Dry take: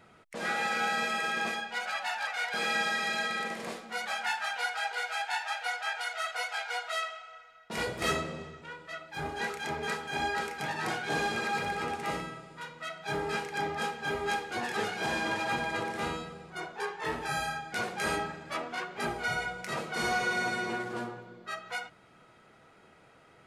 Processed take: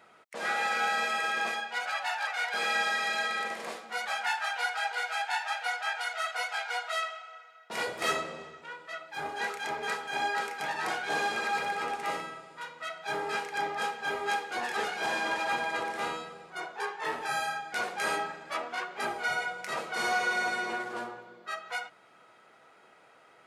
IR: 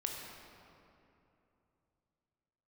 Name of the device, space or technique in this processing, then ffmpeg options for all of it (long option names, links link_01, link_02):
filter by subtraction: -filter_complex "[0:a]asplit=2[link_01][link_02];[link_02]lowpass=770,volume=-1[link_03];[link_01][link_03]amix=inputs=2:normalize=0"